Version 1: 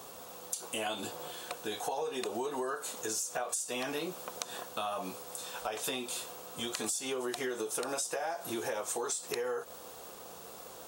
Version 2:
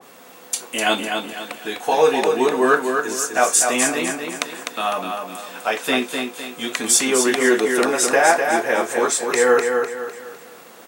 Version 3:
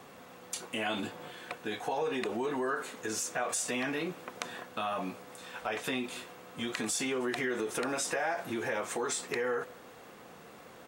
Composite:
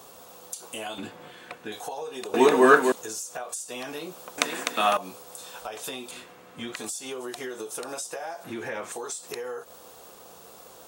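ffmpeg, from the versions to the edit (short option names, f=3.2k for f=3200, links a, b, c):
-filter_complex "[2:a]asplit=3[a][b][c];[1:a]asplit=2[d][e];[0:a]asplit=6[f][g][h][i][j][k];[f]atrim=end=0.982[l];[a]atrim=start=0.978:end=1.722[m];[g]atrim=start=1.718:end=2.342[n];[d]atrim=start=2.338:end=2.922[o];[h]atrim=start=2.918:end=4.382[p];[e]atrim=start=4.378:end=4.972[q];[i]atrim=start=4.968:end=6.112[r];[b]atrim=start=6.108:end=6.762[s];[j]atrim=start=6.758:end=8.442[t];[c]atrim=start=8.438:end=8.922[u];[k]atrim=start=8.918[v];[l][m]acrossfade=d=0.004:c1=hsin:c2=hsin[w];[w][n]acrossfade=d=0.004:c1=hsin:c2=hsin[x];[x][o]acrossfade=d=0.004:c1=hsin:c2=hsin[y];[y][p]acrossfade=d=0.004:c1=hsin:c2=hsin[z];[z][q]acrossfade=d=0.004:c1=hsin:c2=hsin[aa];[aa][r]acrossfade=d=0.004:c1=hsin:c2=hsin[ab];[ab][s]acrossfade=d=0.004:c1=hsin:c2=hsin[ac];[ac][t]acrossfade=d=0.004:c1=hsin:c2=hsin[ad];[ad][u]acrossfade=d=0.004:c1=hsin:c2=hsin[ae];[ae][v]acrossfade=d=0.004:c1=hsin:c2=hsin"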